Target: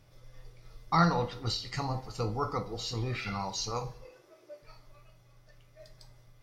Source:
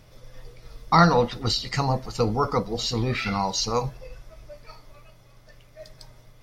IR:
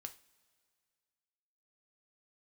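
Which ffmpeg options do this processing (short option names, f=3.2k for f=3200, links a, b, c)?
-filter_complex "[0:a]asettb=1/sr,asplit=3[a][b][c];[a]atrim=end=4.054[d];[b]atrim=start=4.05:end=4.62,asetpts=PTS-STARTPTS,afade=t=in:d=0.004:c=qsin,afade=t=out:st=0.566:d=0.004:c=qsin,highpass=f=360:t=q:w=4[e];[c]atrim=start=4.616[f];[d][e]acrossfade=d=0.004:c1=hsin:c2=qsin[g];[g][f]acrossfade=d=0.004:c1=qsin:c2=hsin[h];[1:a]atrim=start_sample=2205,afade=t=out:st=0.42:d=0.01,atrim=end_sample=18963[i];[h][i]afir=irnorm=-1:irlink=0,volume=-4dB"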